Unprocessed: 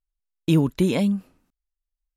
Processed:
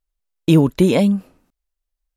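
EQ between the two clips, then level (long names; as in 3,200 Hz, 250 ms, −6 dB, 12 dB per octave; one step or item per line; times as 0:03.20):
parametric band 560 Hz +4.5 dB 1.2 octaves
+5.0 dB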